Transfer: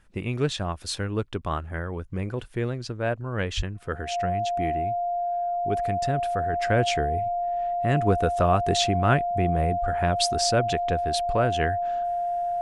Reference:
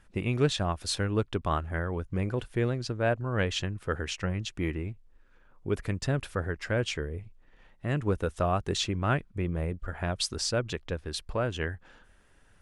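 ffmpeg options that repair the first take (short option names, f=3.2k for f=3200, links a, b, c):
-filter_complex "[0:a]bandreject=f=700:w=30,asplit=3[a][b][c];[a]afade=t=out:st=3.56:d=0.02[d];[b]highpass=f=140:w=0.5412,highpass=f=140:w=1.3066,afade=t=in:st=3.56:d=0.02,afade=t=out:st=3.68:d=0.02[e];[c]afade=t=in:st=3.68:d=0.02[f];[d][e][f]amix=inputs=3:normalize=0,asetnsamples=n=441:p=0,asendcmd='6.53 volume volume -5.5dB',volume=0dB"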